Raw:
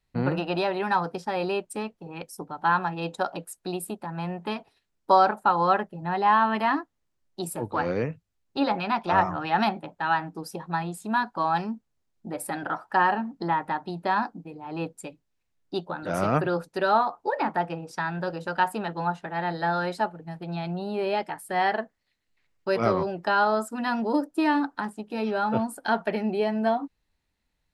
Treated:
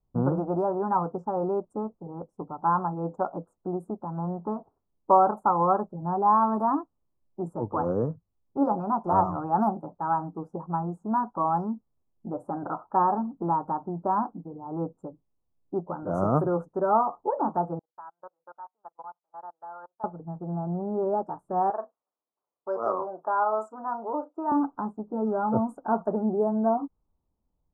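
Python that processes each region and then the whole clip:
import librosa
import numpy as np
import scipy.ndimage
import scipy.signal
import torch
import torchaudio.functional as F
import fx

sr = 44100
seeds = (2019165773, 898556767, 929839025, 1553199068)

y = fx.chain(x, sr, fx.highpass(hz=1000.0, slope=12),
    fx.level_steps(step_db=18),
    fx.upward_expand(threshold_db=-52.0, expansion=2.5), at=(17.79, 20.04))
y = fx.chain(y, sr, fx.bandpass_edges(low_hz=600.0, high_hz=7400.0),
    fx.doubler(ms=37.0, db=-13), at=(21.7, 24.52))
y = fx.env_lowpass(y, sr, base_hz=990.0, full_db=-19.5)
y = scipy.signal.sosfilt(scipy.signal.ellip(3, 1.0, 40, [1200.0, 6800.0], 'bandstop', fs=sr, output='sos'), y)
y = fx.high_shelf(y, sr, hz=2300.0, db=-8.5)
y = F.gain(torch.from_numpy(y), 1.5).numpy()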